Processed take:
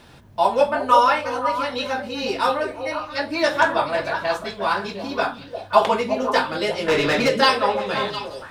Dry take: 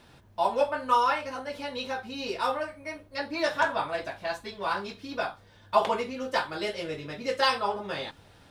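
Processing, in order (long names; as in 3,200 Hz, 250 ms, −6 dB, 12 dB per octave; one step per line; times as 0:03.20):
0:06.88–0:07.29: mid-hump overdrive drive 28 dB, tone 2,800 Hz, clips at −17.5 dBFS
echo through a band-pass that steps 176 ms, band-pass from 180 Hz, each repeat 1.4 octaves, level −1.5 dB
level +7.5 dB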